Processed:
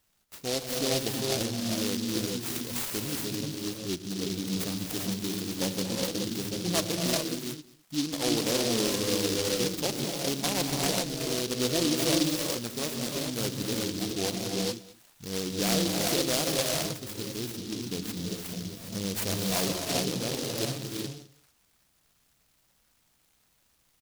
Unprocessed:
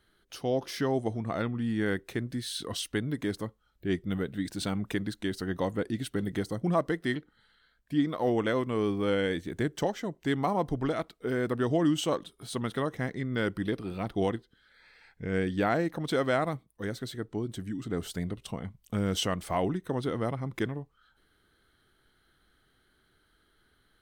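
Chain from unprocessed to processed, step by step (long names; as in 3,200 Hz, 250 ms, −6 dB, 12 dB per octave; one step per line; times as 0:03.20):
spectral tilt +2 dB per octave
phaser swept by the level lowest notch 390 Hz, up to 2,900 Hz, full sweep at −29 dBFS
slap from a distant wall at 36 metres, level −21 dB
reverb whose tail is shaped and stops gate 440 ms rising, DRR −1 dB
short delay modulated by noise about 4,300 Hz, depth 0.23 ms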